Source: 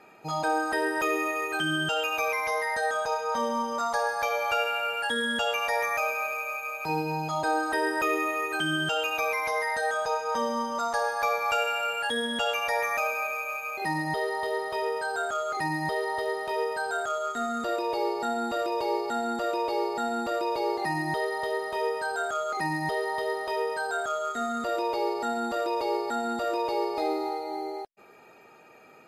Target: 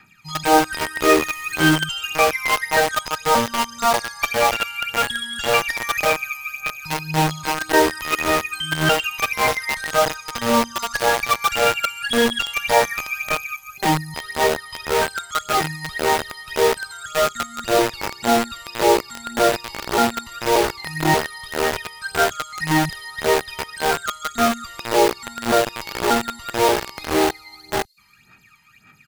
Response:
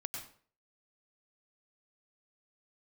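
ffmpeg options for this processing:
-filter_complex "[0:a]asettb=1/sr,asplit=3[link_01][link_02][link_03];[link_01]atrim=end=1.084[link_04];[link_02]atrim=start=1.08:end=1.75,asetpts=PTS-STARTPTS,afade=type=in:duration=0.004:curve=qsin,afade=type=out:start_time=0.666:duration=0.004:curve=qsin,aeval=exprs='val(0)+0.5*0.01*sgn(val(0))':channel_layout=same[link_05];[link_03]atrim=start=1.746[link_06];[link_04][link_05]acrossfade=duration=0.004:curve1=hsin:curve2=qsin[link_07];[link_07][link_06]acrossfade=duration=0.004:curve1=qsin:curve2=hsin,aphaser=in_gain=1:out_gain=1:delay=1:decay=0.73:speed=1.8:type=sinusoidal,asettb=1/sr,asplit=3[link_08][link_09][link_10];[link_08]atrim=end=13.564[link_11];[link_09]atrim=start=13.56:end=14.16,asetpts=PTS-STARTPTS,afade=type=in:duration=0.004:curve=qsin,afade=type=out:start_time=0.596:duration=0.004:curve=qsin,equalizer=frequency=2500:width=0.82:gain=-11[link_12];[link_10]atrim=start=14.156[link_13];[link_11][link_12]acrossfade=duration=0.004:curve1=hsin:curve2=qsin[link_14];[link_14][link_13]acrossfade=duration=0.004:curve1=qsin:curve2=hsin,acrossover=split=190|1400|4300[link_15][link_16][link_17][link_18];[link_16]acrusher=bits=3:mix=0:aa=0.000001[link_19];[link_18]aecho=1:1:369|738|1107|1476:0.224|0.0985|0.0433|0.0191[link_20];[link_15][link_19][link_17][link_20]amix=inputs=4:normalize=0,volume=3.5dB"

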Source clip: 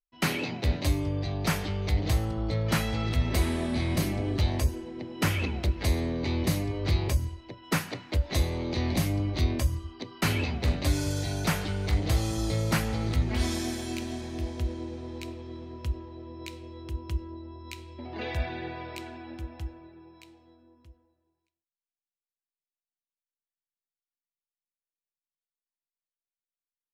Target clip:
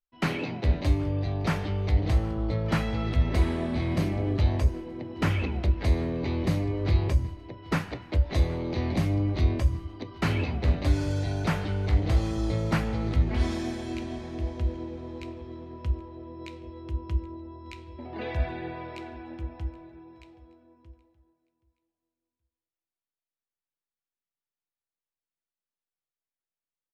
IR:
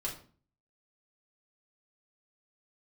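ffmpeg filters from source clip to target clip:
-filter_complex "[0:a]aemphasis=mode=reproduction:type=75fm,aecho=1:1:774|1548:0.0794|0.0254,asplit=2[link_01][link_02];[1:a]atrim=start_sample=2205,asetrate=79380,aresample=44100,adelay=10[link_03];[link_02][link_03]afir=irnorm=-1:irlink=0,volume=-11.5dB[link_04];[link_01][link_04]amix=inputs=2:normalize=0"

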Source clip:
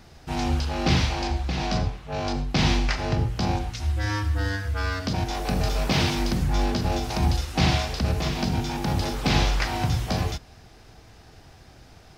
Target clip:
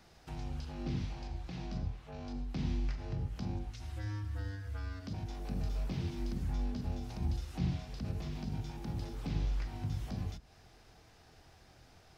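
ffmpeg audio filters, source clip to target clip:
ffmpeg -i in.wav -filter_complex "[0:a]acrossover=split=340[link_01][link_02];[link_01]flanger=delay=18:depth=6.6:speed=0.22[link_03];[link_02]acompressor=threshold=-42dB:ratio=6[link_04];[link_03][link_04]amix=inputs=2:normalize=0,volume=-9dB" out.wav

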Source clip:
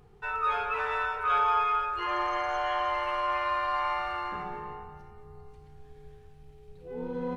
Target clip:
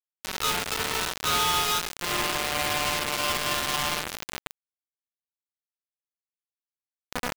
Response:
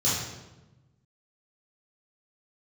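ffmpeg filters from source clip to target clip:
-filter_complex "[0:a]asoftclip=type=tanh:threshold=-30dB,acrossover=split=140[link_01][link_02];[link_01]acompressor=threshold=-53dB:ratio=2[link_03];[link_03][link_02]amix=inputs=2:normalize=0,acrusher=bits=4:mix=0:aa=0.000001,volume=7dB"

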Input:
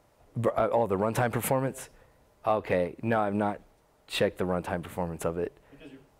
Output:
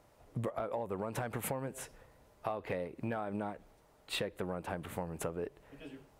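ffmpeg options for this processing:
ffmpeg -i in.wav -af "acompressor=threshold=-33dB:ratio=6,volume=-1dB" out.wav

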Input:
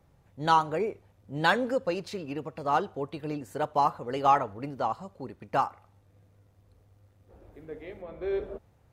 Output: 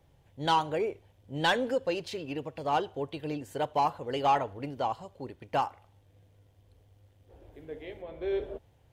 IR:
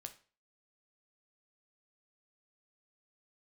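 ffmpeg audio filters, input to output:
-af "equalizer=frequency=200:width_type=o:width=0.33:gain=-9,equalizer=frequency=1250:width_type=o:width=0.33:gain=-8,equalizer=frequency=3150:width_type=o:width=0.33:gain=8,asoftclip=type=tanh:threshold=-16dB"

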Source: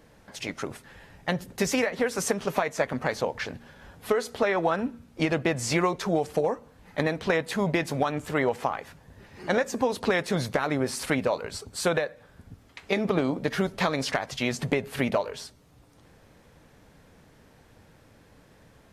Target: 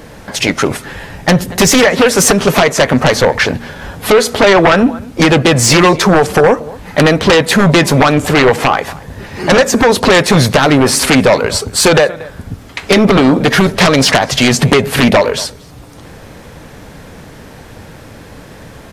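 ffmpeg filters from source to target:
ffmpeg -i in.wav -filter_complex "[0:a]asplit=2[link_01][link_02];[link_02]adelay=233.2,volume=-24dB,highshelf=frequency=4000:gain=-5.25[link_03];[link_01][link_03]amix=inputs=2:normalize=0,aeval=exprs='0.316*sin(PI/2*3.55*val(0)/0.316)':channel_layout=same,volume=7dB" out.wav

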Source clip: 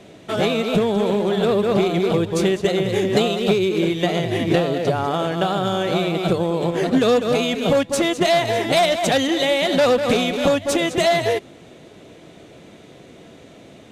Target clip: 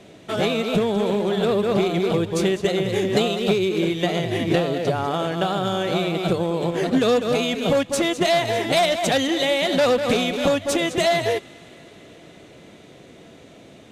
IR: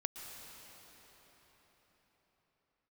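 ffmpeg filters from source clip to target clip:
-filter_complex "[0:a]asplit=2[link_01][link_02];[link_02]highpass=1200[link_03];[1:a]atrim=start_sample=2205,asetrate=28224,aresample=44100[link_04];[link_03][link_04]afir=irnorm=-1:irlink=0,volume=-19dB[link_05];[link_01][link_05]amix=inputs=2:normalize=0,volume=-2dB"

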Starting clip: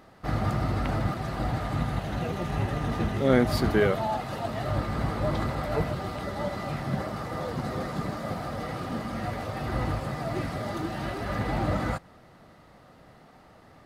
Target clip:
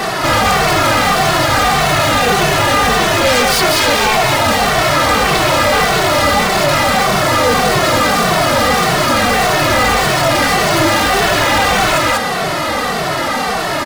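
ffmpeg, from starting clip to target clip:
ffmpeg -i in.wav -filter_complex "[0:a]acrossover=split=350[link_01][link_02];[link_01]acompressor=threshold=-35dB:ratio=6[link_03];[link_03][link_02]amix=inputs=2:normalize=0,asplit=2[link_04][link_05];[link_05]aeval=exprs='0.266*sin(PI/2*7.94*val(0)/0.266)':channel_layout=same,volume=-8dB[link_06];[link_04][link_06]amix=inputs=2:normalize=0,highshelf=frequency=4000:gain=8,aecho=1:1:193:0.596,asplit=2[link_07][link_08];[link_08]highpass=frequency=720:poles=1,volume=31dB,asoftclip=type=tanh:threshold=-11dB[link_09];[link_07][link_09]amix=inputs=2:normalize=0,lowpass=frequency=6100:poles=1,volume=-6dB,lowshelf=frequency=200:gain=3.5,asplit=2[link_10][link_11];[link_11]adelay=2.2,afreqshift=-1.7[link_12];[link_10][link_12]amix=inputs=2:normalize=1,volume=6dB" out.wav

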